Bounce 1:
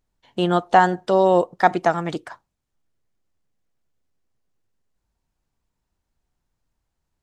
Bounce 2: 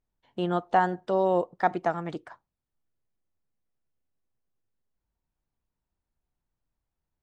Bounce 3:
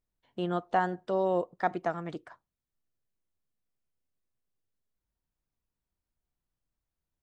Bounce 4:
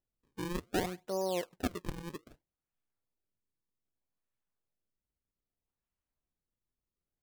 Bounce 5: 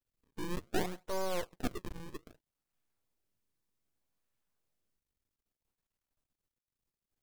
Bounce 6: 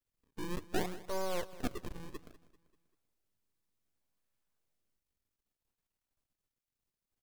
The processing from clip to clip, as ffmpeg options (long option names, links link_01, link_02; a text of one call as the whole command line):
ffmpeg -i in.wav -af "highshelf=frequency=3800:gain=-11,volume=-7.5dB" out.wav
ffmpeg -i in.wav -af "equalizer=frequency=850:width=6.2:gain=-4.5,volume=-3.5dB" out.wav
ffmpeg -i in.wav -af "acrusher=samples=37:mix=1:aa=0.000001:lfo=1:lforange=59.2:lforate=0.63,volume=-6dB" out.wav
ffmpeg -i in.wav -af "aeval=exprs='max(val(0),0)':channel_layout=same,volume=5dB" out.wav
ffmpeg -i in.wav -af "aecho=1:1:195|390|585|780:0.126|0.0592|0.0278|0.0131,volume=-1dB" out.wav